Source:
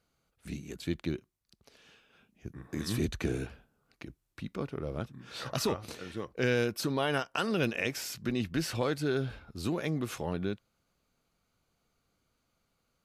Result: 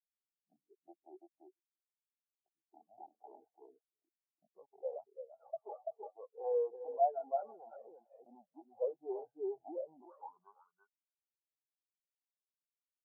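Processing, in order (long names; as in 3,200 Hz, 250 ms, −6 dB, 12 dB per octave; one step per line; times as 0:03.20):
0:07.91–0:08.56: parametric band 870 Hz +7 dB 0.77 octaves
repeating echo 338 ms, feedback 17%, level −5 dB
in parallel at +1 dB: compressor whose output falls as the input rises −36 dBFS, ratio −1
on the sum: wave folding −24 dBFS
band-pass filter sweep 760 Hz → 5,100 Hz, 0:09.89–0:12.92
every bin expanded away from the loudest bin 4 to 1
level +6 dB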